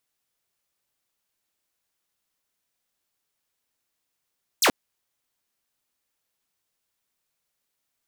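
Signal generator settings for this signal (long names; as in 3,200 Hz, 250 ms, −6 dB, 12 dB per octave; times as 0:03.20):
single falling chirp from 8,900 Hz, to 200 Hz, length 0.08 s saw, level −13 dB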